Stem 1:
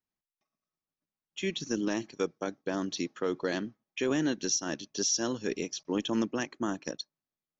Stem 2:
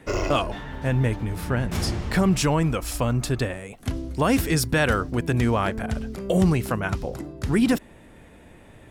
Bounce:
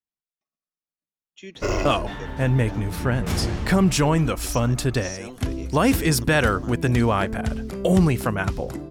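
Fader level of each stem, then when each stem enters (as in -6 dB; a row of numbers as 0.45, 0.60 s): -8.0, +2.0 dB; 0.00, 1.55 s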